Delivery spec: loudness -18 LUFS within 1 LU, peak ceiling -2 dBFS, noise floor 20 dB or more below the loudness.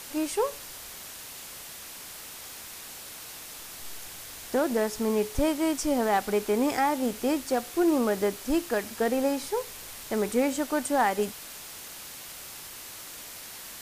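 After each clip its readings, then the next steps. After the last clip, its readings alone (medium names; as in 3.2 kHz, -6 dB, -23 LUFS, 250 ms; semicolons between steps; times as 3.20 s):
noise floor -43 dBFS; noise floor target -49 dBFS; loudness -29.0 LUFS; peak level -15.0 dBFS; loudness target -18.0 LUFS
-> noise reduction 6 dB, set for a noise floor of -43 dBFS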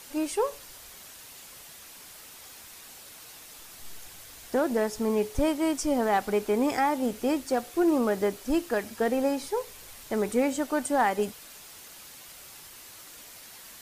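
noise floor -48 dBFS; loudness -27.5 LUFS; peak level -15.5 dBFS; loudness target -18.0 LUFS
-> trim +9.5 dB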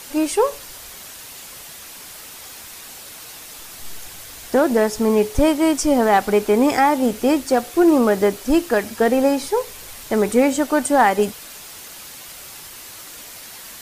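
loudness -18.0 LUFS; peak level -6.0 dBFS; noise floor -38 dBFS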